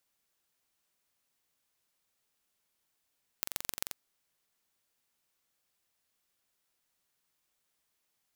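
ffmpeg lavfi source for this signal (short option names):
-f lavfi -i "aevalsrc='0.631*eq(mod(n,1934),0)*(0.5+0.5*eq(mod(n,5802),0))':d=0.52:s=44100"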